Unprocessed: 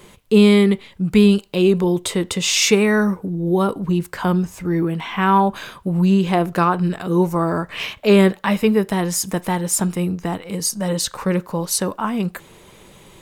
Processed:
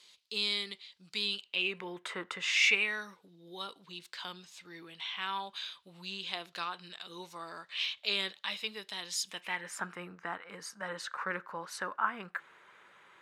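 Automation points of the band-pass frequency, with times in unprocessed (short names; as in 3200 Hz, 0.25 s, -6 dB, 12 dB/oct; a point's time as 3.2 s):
band-pass, Q 3.2
1.18 s 4400 Hz
2.24 s 1300 Hz
3.05 s 3800 Hz
9.23 s 3800 Hz
9.79 s 1500 Hz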